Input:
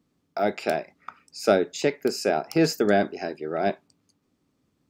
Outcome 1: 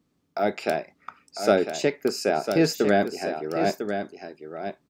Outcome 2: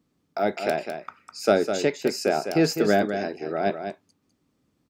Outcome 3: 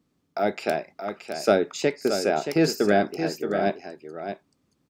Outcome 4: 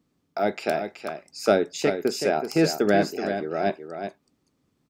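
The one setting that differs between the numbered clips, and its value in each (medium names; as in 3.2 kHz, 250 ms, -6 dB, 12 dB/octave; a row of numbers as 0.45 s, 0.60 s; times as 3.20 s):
delay, time: 1000 ms, 204 ms, 625 ms, 376 ms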